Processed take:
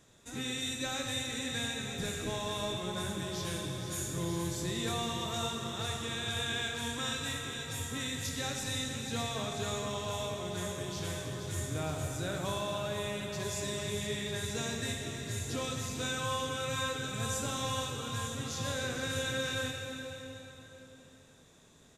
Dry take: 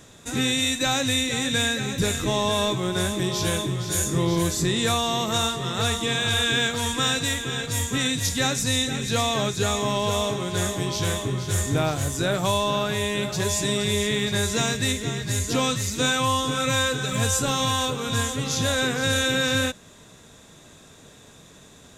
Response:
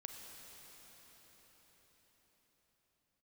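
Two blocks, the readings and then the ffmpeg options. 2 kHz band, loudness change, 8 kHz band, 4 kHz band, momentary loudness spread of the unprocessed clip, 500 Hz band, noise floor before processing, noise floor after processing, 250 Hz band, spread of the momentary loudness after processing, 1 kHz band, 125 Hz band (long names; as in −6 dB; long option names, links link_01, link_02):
−12.0 dB, −12.0 dB, −12.0 dB, −12.0 dB, 4 LU, −11.0 dB, −49 dBFS, −57 dBFS, −12.5 dB, 4 LU, −12.0 dB, −11.5 dB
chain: -filter_complex "[1:a]atrim=start_sample=2205,asetrate=74970,aresample=44100[link_01];[0:a][link_01]afir=irnorm=-1:irlink=0,aresample=32000,aresample=44100,volume=-3.5dB"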